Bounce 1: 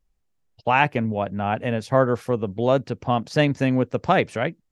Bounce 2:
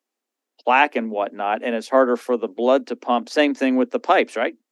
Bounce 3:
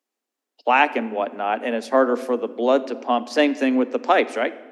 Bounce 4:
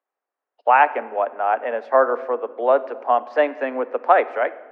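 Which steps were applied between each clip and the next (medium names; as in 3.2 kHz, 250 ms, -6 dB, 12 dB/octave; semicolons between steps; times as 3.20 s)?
steep high-pass 230 Hz 96 dB/octave; trim +3 dB
simulated room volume 1200 m³, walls mixed, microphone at 0.32 m; trim -1 dB
Butterworth band-pass 940 Hz, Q 0.79; trim +3.5 dB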